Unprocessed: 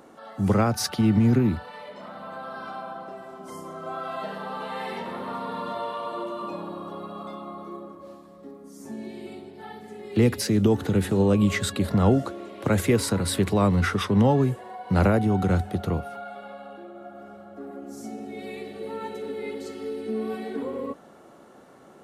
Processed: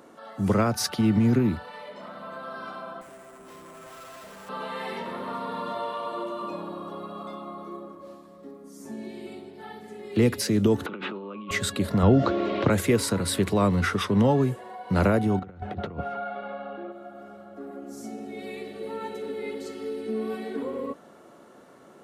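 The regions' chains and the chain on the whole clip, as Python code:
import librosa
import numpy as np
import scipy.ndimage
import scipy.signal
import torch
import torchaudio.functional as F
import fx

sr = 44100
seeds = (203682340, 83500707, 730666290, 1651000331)

y = fx.chain(x, sr, fx.tube_stage(drive_db=42.0, bias=0.65),
    fx.sample_hold(seeds[0], rate_hz=8900.0, jitter_pct=0), at=(3.01, 4.49))
y = fx.chain(y, sr, fx.over_compress(threshold_db=-28.0, ratio=-1.0),
    fx.cabinet(low_hz=240.0, low_slope=24, high_hz=3100.0, hz=(280.0, 460.0, 690.0, 1200.0, 1800.0, 2600.0), db=(-6, -8, -6, 9, -9, 3)), at=(10.86, 11.51))
y = fx.chain(y, sr, fx.lowpass(hz=4900.0, slope=24),
    fx.low_shelf(hz=93.0, db=8.5),
    fx.env_flatten(amount_pct=50), at=(12.03, 12.7))
y = fx.chain(y, sr, fx.lowpass(hz=2700.0, slope=12),
    fx.over_compress(threshold_db=-30.0, ratio=-0.5), at=(15.39, 16.92))
y = fx.low_shelf(y, sr, hz=100.0, db=-6.5)
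y = fx.notch(y, sr, hz=790.0, q=12.0)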